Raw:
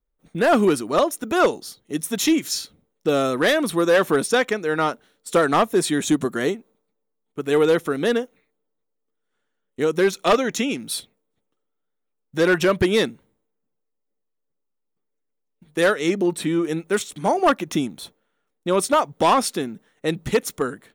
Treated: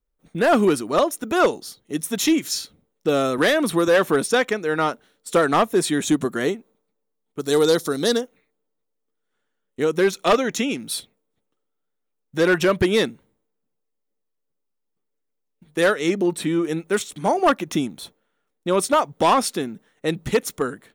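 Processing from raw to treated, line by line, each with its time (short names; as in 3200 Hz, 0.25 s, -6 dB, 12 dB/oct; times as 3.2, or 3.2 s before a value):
3.38–3.88 three-band squash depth 70%
7.39–8.21 resonant high shelf 3400 Hz +8.5 dB, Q 3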